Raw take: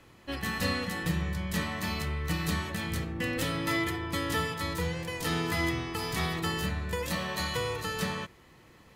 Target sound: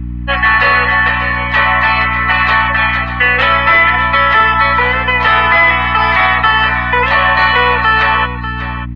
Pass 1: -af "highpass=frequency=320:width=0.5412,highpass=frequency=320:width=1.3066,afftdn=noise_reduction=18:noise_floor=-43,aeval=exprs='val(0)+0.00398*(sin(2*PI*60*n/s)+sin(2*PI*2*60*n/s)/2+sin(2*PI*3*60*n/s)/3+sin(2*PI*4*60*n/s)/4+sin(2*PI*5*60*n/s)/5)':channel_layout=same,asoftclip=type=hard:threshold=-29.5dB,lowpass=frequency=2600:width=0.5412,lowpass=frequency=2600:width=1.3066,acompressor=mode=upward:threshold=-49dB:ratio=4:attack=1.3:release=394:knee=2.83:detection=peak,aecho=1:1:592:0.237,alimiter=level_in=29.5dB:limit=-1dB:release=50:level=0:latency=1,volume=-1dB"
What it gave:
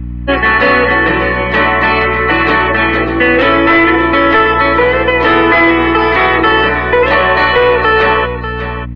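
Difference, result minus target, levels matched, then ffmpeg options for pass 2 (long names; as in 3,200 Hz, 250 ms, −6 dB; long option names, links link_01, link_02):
250 Hz band +11.0 dB
-af "highpass=frequency=700:width=0.5412,highpass=frequency=700:width=1.3066,afftdn=noise_reduction=18:noise_floor=-43,aeval=exprs='val(0)+0.00398*(sin(2*PI*60*n/s)+sin(2*PI*2*60*n/s)/2+sin(2*PI*3*60*n/s)/3+sin(2*PI*4*60*n/s)/4+sin(2*PI*5*60*n/s)/5)':channel_layout=same,asoftclip=type=hard:threshold=-29.5dB,lowpass=frequency=2600:width=0.5412,lowpass=frequency=2600:width=1.3066,acompressor=mode=upward:threshold=-49dB:ratio=4:attack=1.3:release=394:knee=2.83:detection=peak,aecho=1:1:592:0.237,alimiter=level_in=29.5dB:limit=-1dB:release=50:level=0:latency=1,volume=-1dB"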